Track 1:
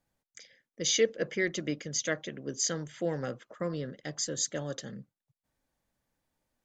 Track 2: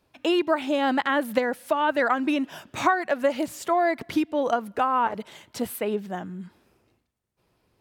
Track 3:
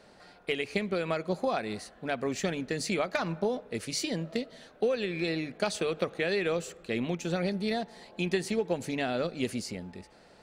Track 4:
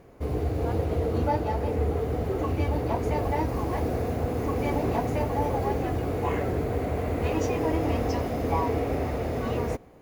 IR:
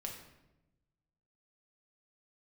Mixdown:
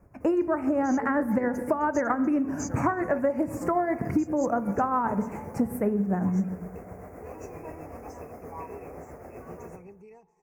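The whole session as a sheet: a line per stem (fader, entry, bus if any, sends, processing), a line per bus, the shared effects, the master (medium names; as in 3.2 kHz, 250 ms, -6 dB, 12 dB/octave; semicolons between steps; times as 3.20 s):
-4.0 dB, 0.00 s, no send, none
+2.0 dB, 0.00 s, send -3 dB, tone controls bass +14 dB, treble -9 dB
-19.5 dB, 2.40 s, no send, rippled EQ curve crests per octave 0.75, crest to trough 17 dB; small resonant body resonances 800/2600 Hz, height 11 dB
-11.0 dB, 0.00 s, send -3 dB, bass shelf 460 Hz -9 dB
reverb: on, RT60 0.95 s, pre-delay 5 ms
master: tremolo triangle 7.7 Hz, depth 50%; Butterworth band-stop 3.5 kHz, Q 0.75; compression 6:1, threshold -22 dBFS, peak gain reduction 11 dB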